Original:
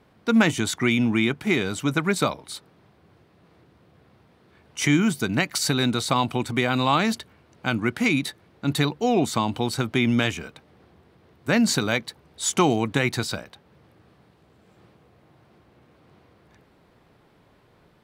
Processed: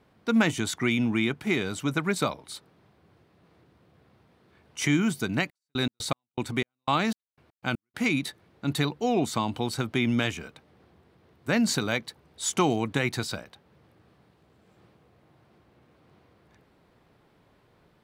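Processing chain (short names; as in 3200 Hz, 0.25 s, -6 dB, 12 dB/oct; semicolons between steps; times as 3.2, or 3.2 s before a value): 5.33–7.94 step gate "x..xx..x.x..x" 120 bpm -60 dB; gain -4 dB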